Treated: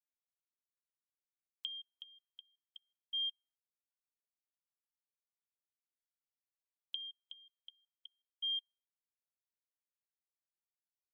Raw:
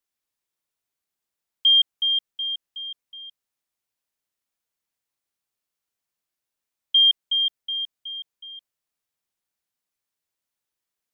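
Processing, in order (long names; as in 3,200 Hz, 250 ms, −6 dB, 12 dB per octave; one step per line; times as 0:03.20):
gate with flip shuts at −32 dBFS, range −28 dB
on a send: repeating echo 64 ms, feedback 54%, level −22 dB
on the sum: expander for the loud parts 2.5 to 1, over −58 dBFS
level +3.5 dB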